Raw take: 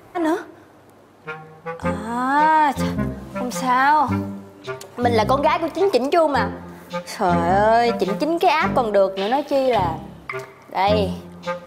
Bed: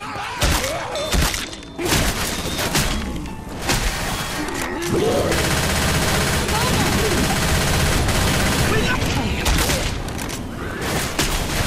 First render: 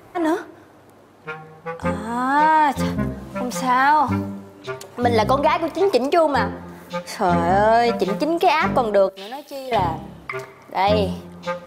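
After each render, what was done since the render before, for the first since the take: 9.09–9.72 pre-emphasis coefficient 0.8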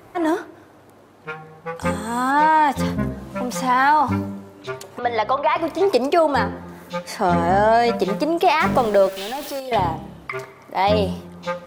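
1.76–2.31 high shelf 3400 Hz +10 dB; 4.99–5.56 three-band isolator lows -16 dB, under 520 Hz, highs -23 dB, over 4100 Hz; 8.6–9.6 zero-crossing step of -28.5 dBFS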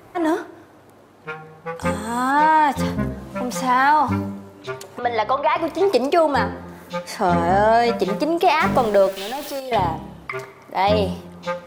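Schroeder reverb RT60 0.75 s, combs from 32 ms, DRR 19.5 dB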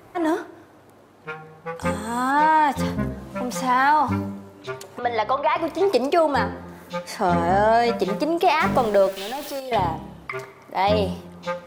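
gain -2 dB

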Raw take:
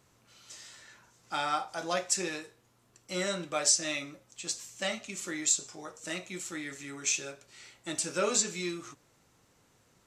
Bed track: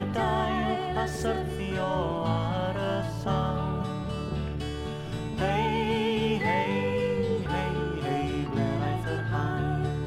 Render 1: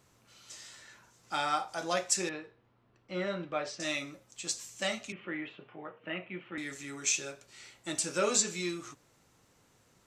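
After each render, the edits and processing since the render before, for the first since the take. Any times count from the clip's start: 2.29–3.8 air absorption 340 m; 5.12–6.58 Chebyshev band-pass 110–3000 Hz, order 5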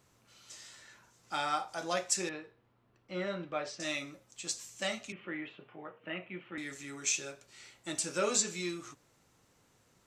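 gain -2 dB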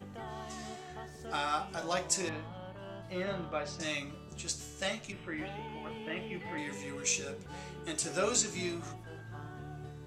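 add bed track -17 dB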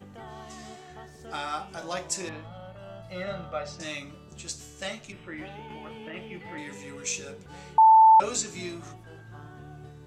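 2.44–3.73 comb 1.5 ms, depth 59%; 5.7–6.14 three-band squash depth 100%; 7.78–8.2 bleep 885 Hz -11.5 dBFS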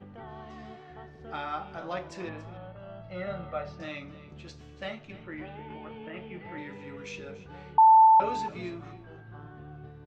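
air absorption 320 m; echo 0.283 s -16.5 dB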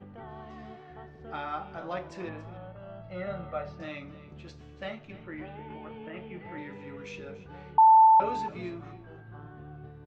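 high shelf 3900 Hz -7.5 dB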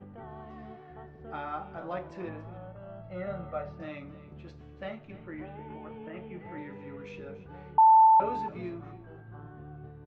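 LPF 1700 Hz 6 dB/oct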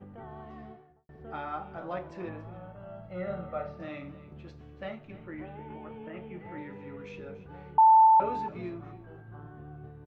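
0.56–1.09 studio fade out; 2.5–4.12 flutter echo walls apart 8.5 m, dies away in 0.34 s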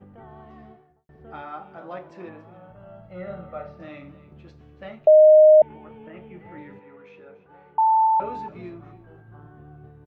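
1.42–2.7 HPF 160 Hz; 5.07–5.62 bleep 618 Hz -8 dBFS; 6.79–8.01 band-pass 990 Hz, Q 0.59

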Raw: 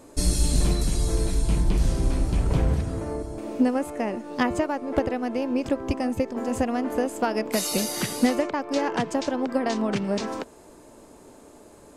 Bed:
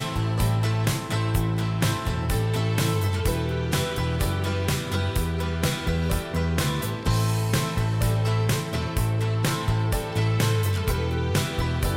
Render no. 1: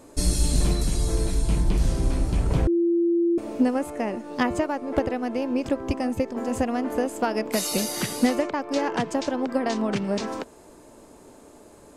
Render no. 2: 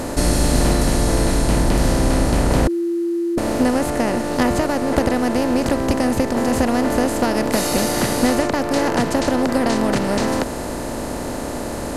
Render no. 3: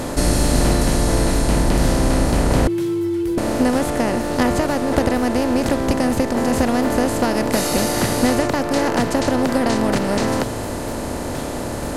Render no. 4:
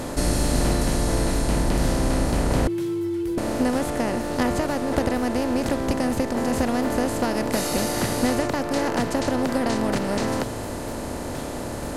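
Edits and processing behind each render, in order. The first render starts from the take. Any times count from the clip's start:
2.67–3.38 bleep 341 Hz -18 dBFS
per-bin compression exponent 0.4
add bed -10.5 dB
gain -5 dB

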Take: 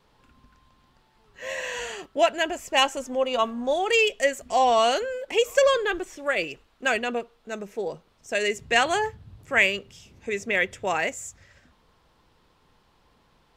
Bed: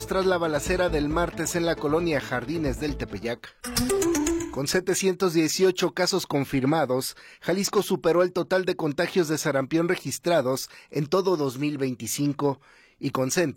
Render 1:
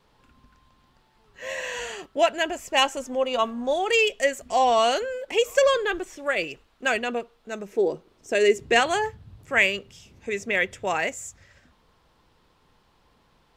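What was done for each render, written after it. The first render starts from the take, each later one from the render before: 7.72–8.8 bell 350 Hz +12.5 dB 0.79 oct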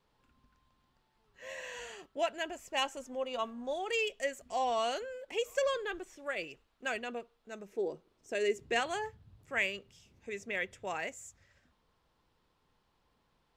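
gain -12 dB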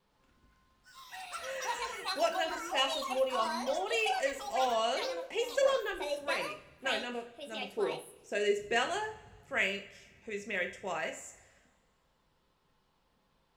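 two-slope reverb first 0.42 s, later 1.7 s, from -18 dB, DRR 4 dB; echoes that change speed 0.117 s, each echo +6 st, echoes 3, each echo -6 dB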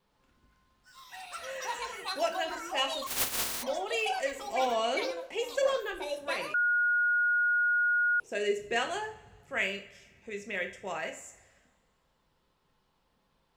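3.06–3.62 spectral contrast lowered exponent 0.1; 4.39–5.11 small resonant body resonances 330/2300 Hz, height 11 dB, ringing for 25 ms; 6.54–8.2 bleep 1440 Hz -23.5 dBFS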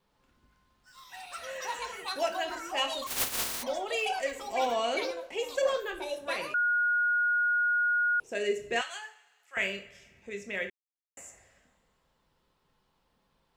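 8.81–9.57 HPF 1500 Hz; 10.7–11.17 mute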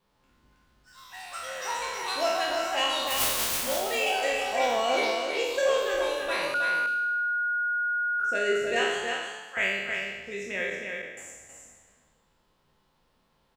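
spectral trails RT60 1.19 s; on a send: echo 0.319 s -5 dB

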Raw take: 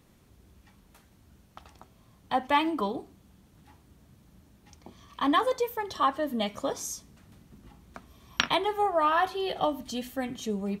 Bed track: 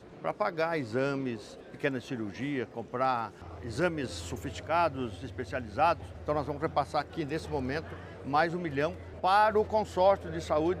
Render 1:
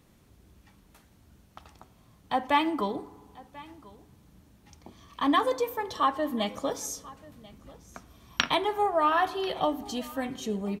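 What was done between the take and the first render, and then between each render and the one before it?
echo 1.039 s -21.5 dB; FDN reverb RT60 1.7 s, low-frequency decay 0.8×, high-frequency decay 0.3×, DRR 17 dB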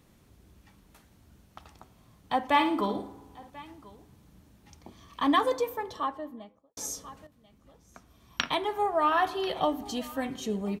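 2.47–3.5 flutter echo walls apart 9.3 m, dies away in 0.4 s; 5.45–6.77 studio fade out; 7.27–9.3 fade in, from -13.5 dB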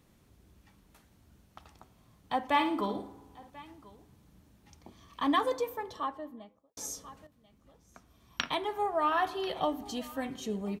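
gain -3.5 dB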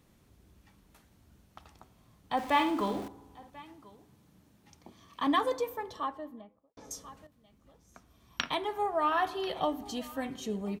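2.37–3.08 zero-crossing step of -40.5 dBFS; 3.6–5.27 HPF 100 Hz; 6.41–6.91 air absorption 380 m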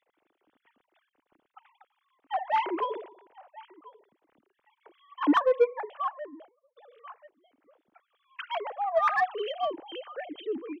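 sine-wave speech; in parallel at -3.5 dB: soft clip -27.5 dBFS, distortion -7 dB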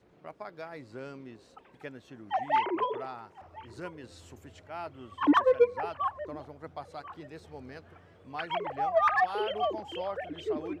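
add bed track -12.5 dB

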